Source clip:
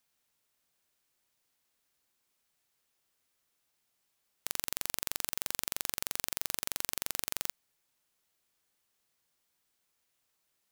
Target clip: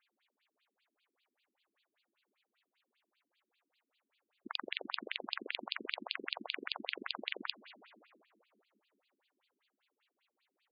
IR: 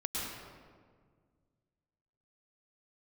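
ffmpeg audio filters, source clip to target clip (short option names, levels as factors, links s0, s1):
-filter_complex "[0:a]lowpass=5300,asplit=2[s0][s1];[1:a]atrim=start_sample=2205,asetrate=22050,aresample=44100[s2];[s1][s2]afir=irnorm=-1:irlink=0,volume=0.0794[s3];[s0][s3]amix=inputs=2:normalize=0,afftfilt=real='re*between(b*sr/1024,250*pow(3500/250,0.5+0.5*sin(2*PI*5.1*pts/sr))/1.41,250*pow(3500/250,0.5+0.5*sin(2*PI*5.1*pts/sr))*1.41)':imag='im*between(b*sr/1024,250*pow(3500/250,0.5+0.5*sin(2*PI*5.1*pts/sr))/1.41,250*pow(3500/250,0.5+0.5*sin(2*PI*5.1*pts/sr))*1.41)':win_size=1024:overlap=0.75,volume=2.99"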